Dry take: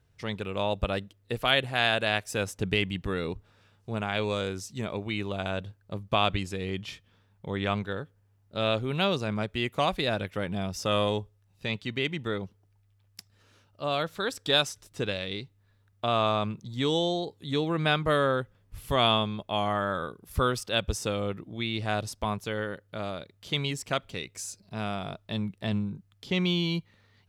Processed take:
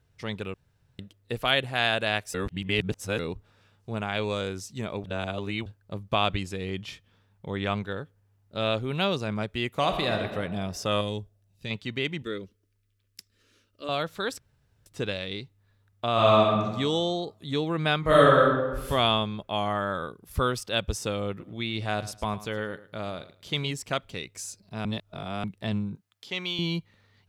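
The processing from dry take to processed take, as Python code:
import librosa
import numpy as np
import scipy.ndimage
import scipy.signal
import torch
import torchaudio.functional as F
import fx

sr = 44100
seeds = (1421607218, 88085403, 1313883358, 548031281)

y = fx.reverb_throw(x, sr, start_s=9.71, length_s=0.48, rt60_s=1.6, drr_db=4.5)
y = fx.peak_eq(y, sr, hz=1000.0, db=-9.5, octaves=2.6, at=(11.01, 11.71))
y = fx.fixed_phaser(y, sr, hz=330.0, stages=4, at=(12.22, 13.89))
y = fx.reverb_throw(y, sr, start_s=16.13, length_s=0.51, rt60_s=1.2, drr_db=-4.5)
y = fx.reverb_throw(y, sr, start_s=18.0, length_s=0.88, rt60_s=1.2, drr_db=-6.5)
y = fx.echo_feedback(y, sr, ms=108, feedback_pct=21, wet_db=-16, at=(21.39, 23.7), fade=0.02)
y = fx.highpass(y, sr, hz=880.0, slope=6, at=(25.95, 26.59))
y = fx.edit(y, sr, fx.room_tone_fill(start_s=0.54, length_s=0.45),
    fx.reverse_span(start_s=2.34, length_s=0.85),
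    fx.reverse_span(start_s=5.04, length_s=0.62),
    fx.room_tone_fill(start_s=14.39, length_s=0.47),
    fx.reverse_span(start_s=24.85, length_s=0.59), tone=tone)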